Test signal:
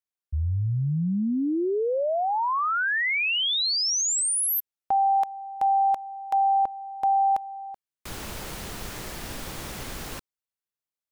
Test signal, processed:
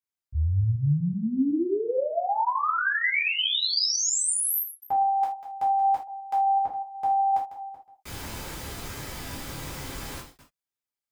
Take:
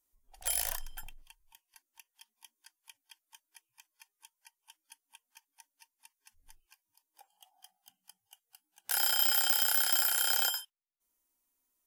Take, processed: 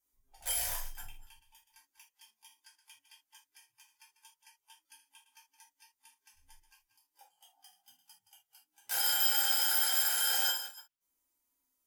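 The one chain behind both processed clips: chunks repeated in reverse 124 ms, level -12 dB; gated-style reverb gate 100 ms falling, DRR -6 dB; trim -8 dB

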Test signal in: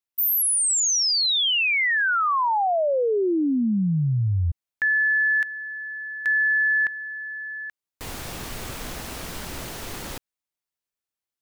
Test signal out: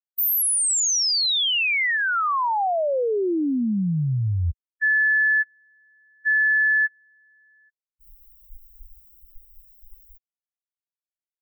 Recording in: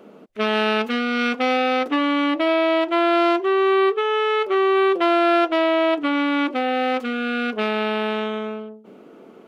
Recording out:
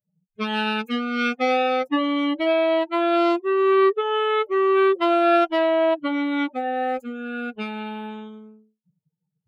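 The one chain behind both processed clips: expander on every frequency bin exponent 3; trim +2 dB

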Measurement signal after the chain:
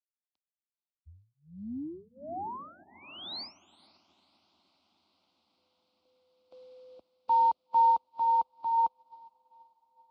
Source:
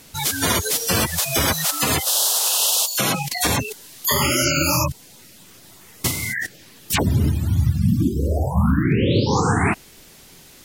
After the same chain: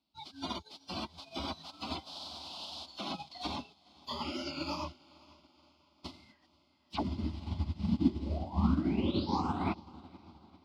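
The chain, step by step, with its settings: high-pass 51 Hz 24 dB/octave; resonant high shelf 5.5 kHz -6.5 dB, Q 3; in parallel at -2.5 dB: peak limiter -16.5 dBFS; on the sum: distance through air 140 m; static phaser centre 470 Hz, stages 6; on a send: echo that smears into a reverb 498 ms, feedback 76%, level -10.5 dB; on the sum: upward expansion 2.5:1, over -34 dBFS; trim -6.5 dB

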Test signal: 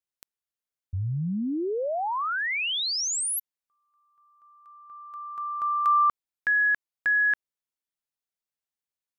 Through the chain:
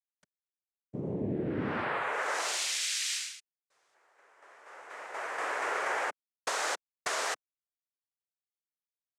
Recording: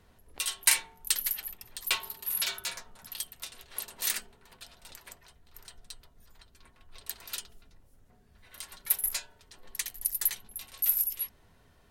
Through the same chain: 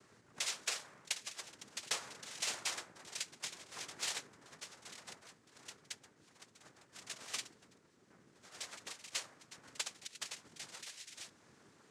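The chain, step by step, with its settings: compression 10:1, threshold -31 dBFS; word length cut 12-bit, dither none; noise-vocoded speech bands 3

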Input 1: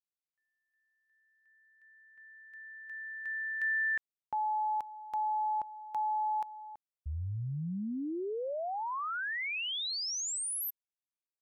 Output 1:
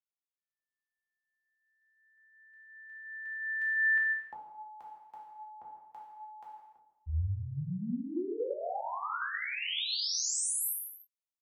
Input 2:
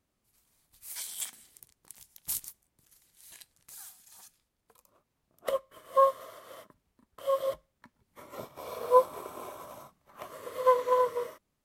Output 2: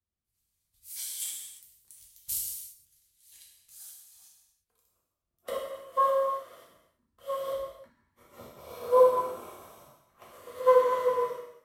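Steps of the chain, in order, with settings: gated-style reverb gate 380 ms falling, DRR -4.5 dB; three bands expanded up and down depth 40%; trim -6.5 dB

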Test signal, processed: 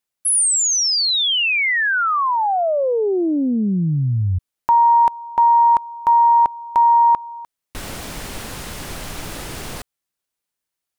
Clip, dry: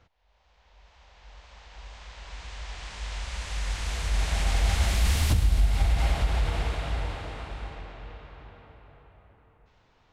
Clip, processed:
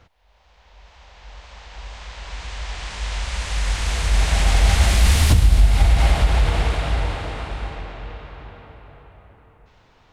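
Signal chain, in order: peaking EQ 9.3 kHz +2.5 dB 0.37 oct; loudspeaker Doppler distortion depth 0.2 ms; trim +8.5 dB

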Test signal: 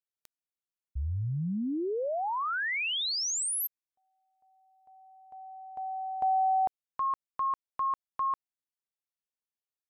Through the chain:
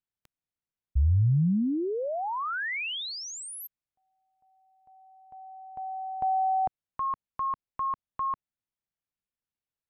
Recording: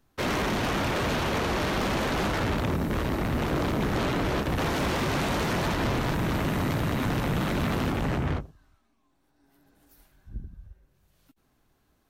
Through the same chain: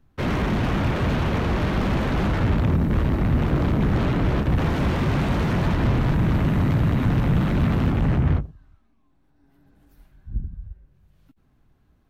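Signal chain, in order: tone controls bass +10 dB, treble -9 dB

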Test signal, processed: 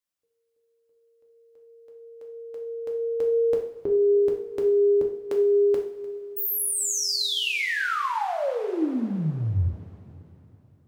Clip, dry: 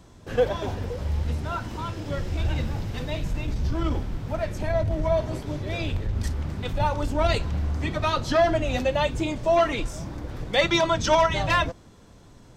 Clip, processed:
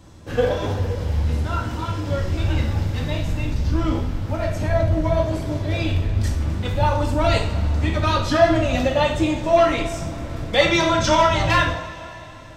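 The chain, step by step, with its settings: two-slope reverb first 0.51 s, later 3.6 s, from -18 dB, DRR 0 dB; trim +1.5 dB

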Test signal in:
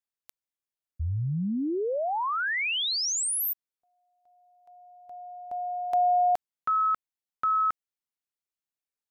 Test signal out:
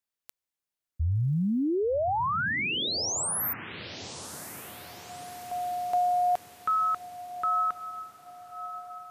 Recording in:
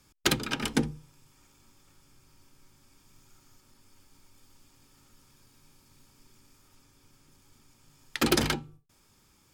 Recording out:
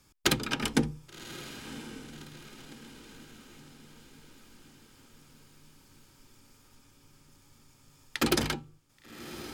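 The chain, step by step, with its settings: gain riding 0.5 s; echo that smears into a reverb 1122 ms, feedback 51%, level -13 dB

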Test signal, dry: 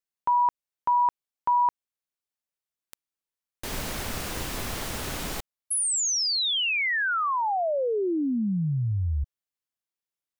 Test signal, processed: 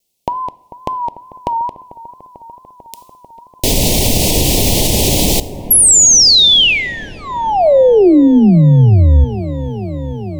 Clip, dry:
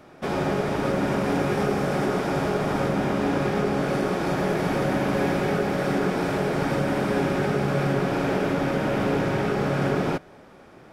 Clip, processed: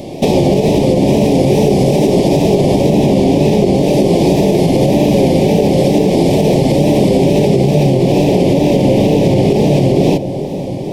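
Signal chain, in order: compression, threshold -30 dBFS; wow and flutter 2.1 Hz 100 cents; Butterworth band-stop 1.4 kHz, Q 0.66; feedback echo behind a low-pass 444 ms, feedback 82%, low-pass 1.3 kHz, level -16 dB; two-slope reverb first 0.69 s, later 2.5 s, from -18 dB, DRR 17 dB; loudness maximiser +25 dB; trim -1 dB

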